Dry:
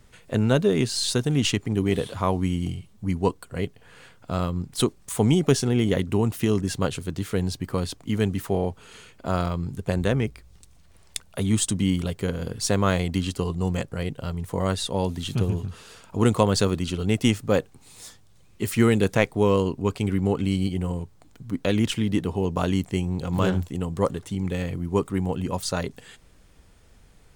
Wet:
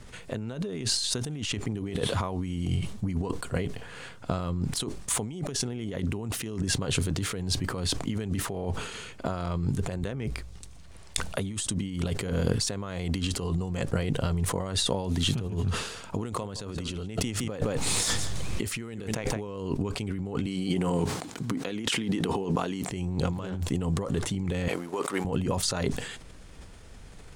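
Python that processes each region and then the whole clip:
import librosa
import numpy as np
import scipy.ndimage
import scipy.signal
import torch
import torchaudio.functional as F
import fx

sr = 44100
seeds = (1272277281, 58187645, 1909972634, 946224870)

y = fx.chain(x, sr, fx.echo_single(ms=166, db=-17.0),
    fx.env_flatten(amount_pct=50), at=(16.24, 19.47))
y = fx.chain(y, sr, fx.highpass(hz=210.0, slope=12),
    fx.notch(hz=590.0, q=9.3),
    fx.over_compress(threshold_db=-36.0, ratio=-1.0), at=(20.46, 22.9))
y = fx.chain(y, sr, fx.law_mismatch(coded='A'),
    fx.highpass(hz=510.0, slope=12), at=(24.68, 25.25))
y = fx.over_compress(y, sr, threshold_db=-31.0, ratio=-1.0)
y = scipy.signal.sosfilt(scipy.signal.butter(2, 11000.0, 'lowpass', fs=sr, output='sos'), y)
y = fx.sustainer(y, sr, db_per_s=64.0)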